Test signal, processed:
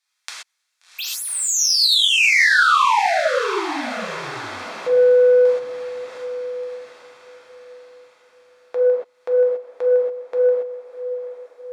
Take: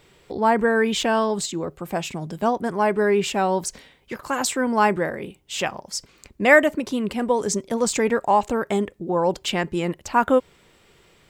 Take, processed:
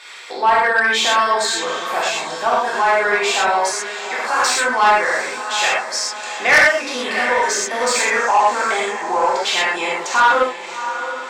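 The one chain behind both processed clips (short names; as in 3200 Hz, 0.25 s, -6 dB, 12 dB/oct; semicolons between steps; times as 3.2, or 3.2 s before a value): tracing distortion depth 0.022 ms; HPF 1000 Hz 12 dB/oct; notch 2900 Hz, Q 8.4; in parallel at +1 dB: compressor, threshold -35 dBFS; on the sum: air absorption 71 m; diffused feedback echo 0.719 s, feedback 45%, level -12 dB; non-linear reverb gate 0.15 s flat, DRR -6.5 dB; soft clip -10.5 dBFS; mismatched tape noise reduction encoder only; gain +4 dB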